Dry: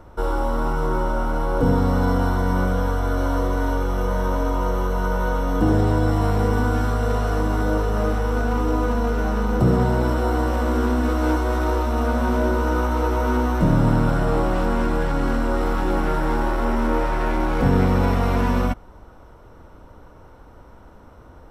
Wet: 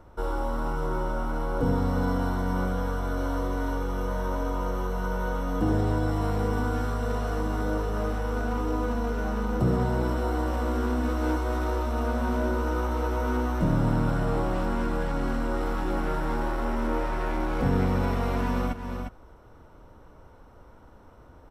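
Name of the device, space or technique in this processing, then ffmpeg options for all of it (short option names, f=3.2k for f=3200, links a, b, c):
ducked delay: -filter_complex "[0:a]asplit=3[a][b][c];[b]adelay=353,volume=-6.5dB[d];[c]apad=whole_len=964065[e];[d][e]sidechaincompress=threshold=-24dB:ratio=8:attack=7.6:release=267[f];[a][f]amix=inputs=2:normalize=0,volume=-6.5dB"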